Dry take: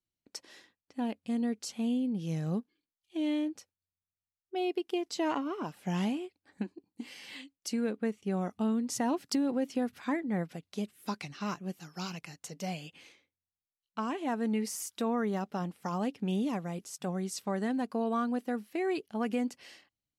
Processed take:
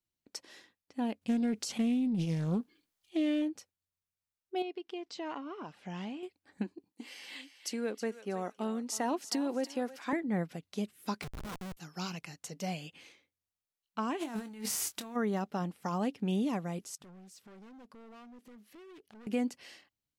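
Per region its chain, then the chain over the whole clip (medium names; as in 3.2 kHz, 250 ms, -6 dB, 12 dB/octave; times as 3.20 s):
1.21–3.42 s: transient shaper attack +4 dB, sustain +10 dB + loudspeaker Doppler distortion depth 0.2 ms
4.62–6.23 s: low-pass 4.9 kHz + bass shelf 420 Hz -4.5 dB + compression 1.5:1, threshold -47 dBFS
6.92–10.13 s: high-pass 310 Hz + thinning echo 320 ms, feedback 25%, high-pass 900 Hz, level -11 dB
11.22–11.77 s: band-stop 2.8 kHz, Q 6.9 + slow attack 136 ms + Schmitt trigger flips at -42.5 dBFS
14.19–15.15 s: formants flattened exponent 0.6 + compressor with a negative ratio -36 dBFS, ratio -0.5 + doubling 25 ms -12 dB
16.95–19.27 s: hard clipper -35.5 dBFS + compression 8:1, threshold -53 dBFS + loudspeaker Doppler distortion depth 0.39 ms
whole clip: none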